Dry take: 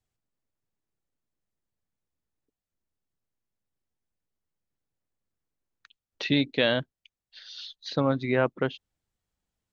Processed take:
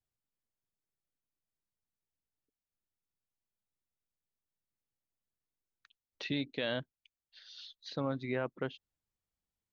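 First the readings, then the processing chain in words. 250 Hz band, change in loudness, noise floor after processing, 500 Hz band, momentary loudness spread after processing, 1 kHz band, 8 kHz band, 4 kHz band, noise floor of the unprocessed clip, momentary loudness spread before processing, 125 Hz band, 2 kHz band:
−10.5 dB, −11.0 dB, below −85 dBFS, −10.5 dB, 19 LU, −11.0 dB, can't be measured, −10.5 dB, below −85 dBFS, 16 LU, −10.0 dB, −11.0 dB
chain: brickwall limiter −13.5 dBFS, peak gain reduction 4 dB
level −9 dB

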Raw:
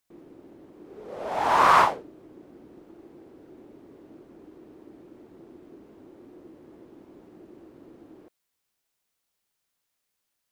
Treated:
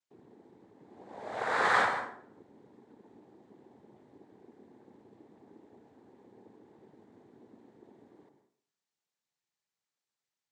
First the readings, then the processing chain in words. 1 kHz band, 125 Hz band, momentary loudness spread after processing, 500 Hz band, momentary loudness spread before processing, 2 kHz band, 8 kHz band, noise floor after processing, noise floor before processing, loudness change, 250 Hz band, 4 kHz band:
−10.5 dB, −9.0 dB, 18 LU, −7.0 dB, 20 LU, −1.5 dB, −8.0 dB, below −85 dBFS, −80 dBFS, −9.0 dB, −8.5 dB, −6.5 dB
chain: cochlear-implant simulation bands 6
dense smooth reverb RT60 0.57 s, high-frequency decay 0.7×, pre-delay 100 ms, DRR 7.5 dB
level −9 dB

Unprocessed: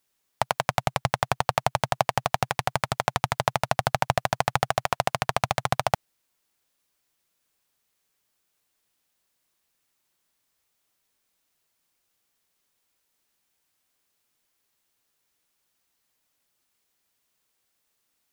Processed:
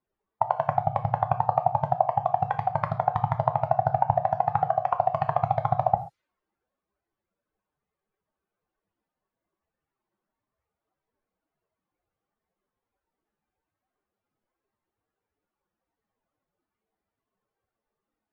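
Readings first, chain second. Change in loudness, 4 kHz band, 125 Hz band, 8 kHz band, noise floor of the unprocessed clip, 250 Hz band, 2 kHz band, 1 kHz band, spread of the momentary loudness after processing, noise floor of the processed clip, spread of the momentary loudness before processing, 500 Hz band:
+1.0 dB, below −20 dB, +1.5 dB, below −35 dB, −76 dBFS, −1.5 dB, −12.5 dB, +3.0 dB, 3 LU, below −85 dBFS, 2 LU, +1.5 dB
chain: expanding power law on the bin magnitudes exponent 2.6
reverb whose tail is shaped and stops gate 160 ms falling, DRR 6.5 dB
low-pass that shuts in the quiet parts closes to 1,000 Hz, open at −22 dBFS
level +1 dB

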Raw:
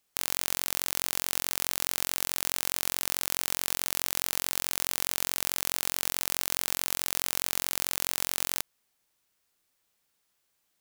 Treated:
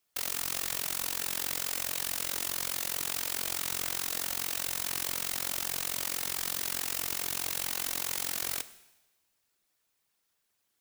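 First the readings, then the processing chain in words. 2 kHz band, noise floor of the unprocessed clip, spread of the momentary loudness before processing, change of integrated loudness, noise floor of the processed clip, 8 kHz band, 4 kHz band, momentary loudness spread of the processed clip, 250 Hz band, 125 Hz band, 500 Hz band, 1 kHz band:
−2.5 dB, −76 dBFS, 0 LU, −2.5 dB, −78 dBFS, −2.0 dB, −2.5 dB, 0 LU, −2.5 dB, −2.0 dB, −2.5 dB, −2.5 dB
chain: random phases in short frames
coupled-rooms reverb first 0.99 s, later 2.8 s, from −27 dB, DRR 13 dB
level −2.5 dB

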